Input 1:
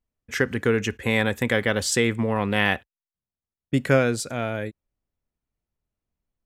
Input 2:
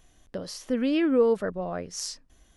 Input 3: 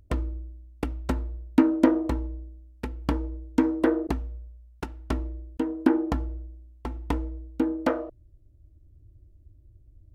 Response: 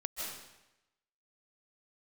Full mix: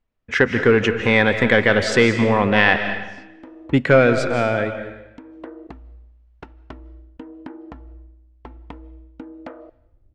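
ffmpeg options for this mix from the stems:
-filter_complex "[0:a]acontrast=89,volume=0.891,asplit=3[s0][s1][s2];[s1]volume=0.562[s3];[1:a]adelay=1100,volume=0.211,asplit=2[s4][s5];[s5]volume=0.0708[s6];[2:a]acompressor=mode=upward:threshold=0.00631:ratio=2.5,volume=3.98,asoftclip=hard,volume=0.251,acompressor=threshold=0.0282:ratio=6,adelay=1600,volume=0.891,asplit=2[s7][s8];[s8]volume=0.0708[s9];[s2]apad=whole_len=518096[s10];[s7][s10]sidechaincompress=threshold=0.0112:ratio=4:attack=7:release=538[s11];[3:a]atrim=start_sample=2205[s12];[s3][s6][s9]amix=inputs=3:normalize=0[s13];[s13][s12]afir=irnorm=-1:irlink=0[s14];[s0][s4][s11][s14]amix=inputs=4:normalize=0,lowpass=3100,equalizer=f=100:w=0.33:g=-4.5"

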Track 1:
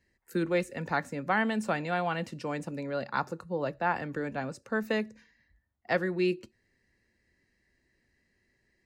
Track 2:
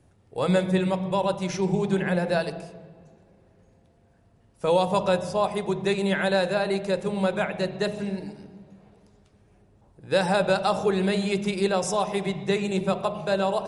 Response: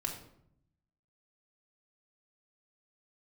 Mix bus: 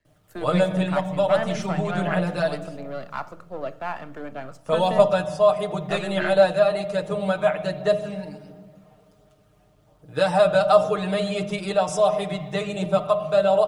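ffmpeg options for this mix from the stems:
-filter_complex "[0:a]aeval=exprs='if(lt(val(0),0),0.447*val(0),val(0))':c=same,acrossover=split=160|3000[s0][s1][s2];[s0]acompressor=threshold=0.00794:ratio=6[s3];[s3][s1][s2]amix=inputs=3:normalize=0,volume=0.531,asplit=2[s4][s5];[s5]volume=0.355[s6];[1:a]aecho=1:1:6.6:0.94,acrusher=bits=10:mix=0:aa=0.000001,adelay=50,volume=0.562[s7];[2:a]atrim=start_sample=2205[s8];[s6][s8]afir=irnorm=-1:irlink=0[s9];[s4][s7][s9]amix=inputs=3:normalize=0,equalizer=f=630:t=o:w=0.33:g=11,equalizer=f=1250:t=o:w=0.33:g=9,equalizer=f=3150:t=o:w=0.33:g=5,aphaser=in_gain=1:out_gain=1:delay=1.2:decay=0.23:speed=1.4:type=triangular"

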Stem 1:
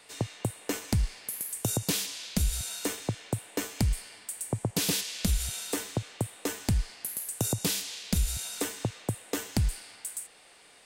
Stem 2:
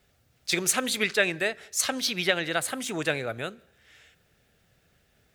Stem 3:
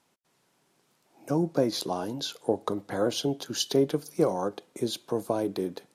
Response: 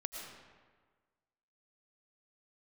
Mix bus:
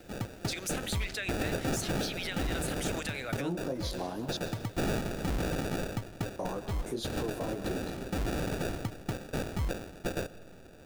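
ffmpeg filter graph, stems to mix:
-filter_complex "[0:a]aemphasis=mode=production:type=50fm,acrusher=samples=42:mix=1:aa=0.000001,volume=0.355,asplit=2[s0][s1];[s1]volume=0.237[s2];[1:a]tiltshelf=f=970:g=-6.5,acompressor=threshold=0.0251:ratio=4,volume=0.531[s3];[2:a]flanger=delay=15.5:depth=7:speed=1.8,adelay=2100,volume=0.841,asplit=3[s4][s5][s6];[s4]atrim=end=4.37,asetpts=PTS-STARTPTS,afade=t=out:st=4.366:d=0.004:c=hsin[s7];[s5]atrim=start=4.37:end=6.39,asetpts=PTS-STARTPTS,volume=0[s8];[s6]atrim=start=6.39,asetpts=PTS-STARTPTS,afade=t=in:d=0.004:c=hsin[s9];[s7][s8][s9]concat=n=3:v=0:a=1,asplit=2[s10][s11];[s11]volume=0.562[s12];[s0][s3]amix=inputs=2:normalize=0,aeval=exprs='0.141*(cos(1*acos(clip(val(0)/0.141,-1,1)))-cos(1*PI/2))+0.0282*(cos(5*acos(clip(val(0)/0.141,-1,1)))-cos(5*PI/2))':c=same,alimiter=level_in=1.33:limit=0.0631:level=0:latency=1:release=43,volume=0.75,volume=1[s13];[3:a]atrim=start_sample=2205[s14];[s2][s12]amix=inputs=2:normalize=0[s15];[s15][s14]afir=irnorm=-1:irlink=0[s16];[s10][s13][s16]amix=inputs=3:normalize=0,alimiter=level_in=1.06:limit=0.0631:level=0:latency=1:release=285,volume=0.944"

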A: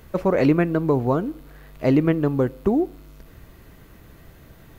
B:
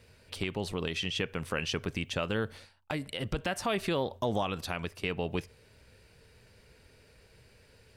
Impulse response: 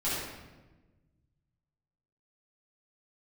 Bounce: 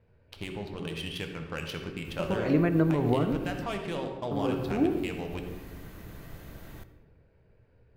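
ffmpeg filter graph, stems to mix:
-filter_complex "[0:a]alimiter=limit=0.158:level=0:latency=1:release=107,adelay=2050,volume=1.12,asplit=3[s0][s1][s2];[s0]atrim=end=3.64,asetpts=PTS-STARTPTS,afade=t=out:st=3.636:d=0.004:c=hsin[s3];[s1]atrim=start=3.64:end=4.31,asetpts=PTS-STARTPTS,volume=0[s4];[s2]atrim=start=4.31,asetpts=PTS-STARTPTS,afade=t=in:d=0.004:c=hsin[s5];[s3][s4][s5]concat=n=3:v=0:a=1,asplit=2[s6][s7];[s7]volume=0.119[s8];[1:a]adynamicsmooth=sensitivity=7:basefreq=1300,volume=0.501,asplit=3[s9][s10][s11];[s10]volume=0.316[s12];[s11]apad=whole_len=301401[s13];[s6][s13]sidechaincompress=threshold=0.00631:ratio=8:attack=16:release=148[s14];[2:a]atrim=start_sample=2205[s15];[s8][s12]amix=inputs=2:normalize=0[s16];[s16][s15]afir=irnorm=-1:irlink=0[s17];[s14][s9][s17]amix=inputs=3:normalize=0"

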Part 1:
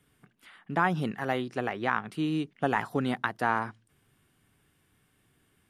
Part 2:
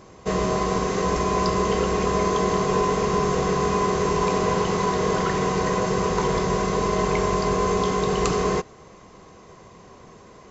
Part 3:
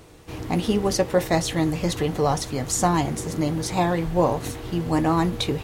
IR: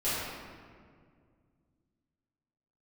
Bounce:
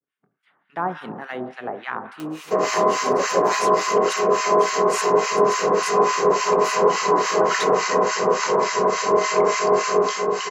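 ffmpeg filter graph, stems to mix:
-filter_complex "[0:a]aemphasis=mode=reproduction:type=riaa,agate=range=0.0224:threshold=0.00316:ratio=3:detection=peak,volume=0.75,asplit=3[s0][s1][s2];[s1]volume=0.141[s3];[1:a]bandreject=f=3500:w=5.4,adelay=2250,volume=1.41,asplit=2[s4][s5];[s5]volume=0.224[s6];[2:a]acompressor=mode=upward:threshold=0.0447:ratio=2.5,adelay=2200,volume=0.668[s7];[s2]apad=whole_len=345552[s8];[s7][s8]sidechaingate=range=0.501:threshold=0.00141:ratio=16:detection=peak[s9];[3:a]atrim=start_sample=2205[s10];[s3][s6]amix=inputs=2:normalize=0[s11];[s11][s10]afir=irnorm=-1:irlink=0[s12];[s0][s4][s9][s12]amix=inputs=4:normalize=0,highpass=460,dynaudnorm=f=100:g=11:m=2.51,acrossover=split=1200[s13][s14];[s13]aeval=exprs='val(0)*(1-1/2+1/2*cos(2*PI*3.5*n/s))':c=same[s15];[s14]aeval=exprs='val(0)*(1-1/2-1/2*cos(2*PI*3.5*n/s))':c=same[s16];[s15][s16]amix=inputs=2:normalize=0"

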